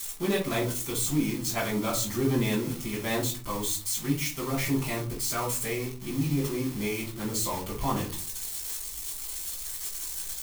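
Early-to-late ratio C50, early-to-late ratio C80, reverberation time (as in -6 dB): 8.0 dB, 13.5 dB, 0.40 s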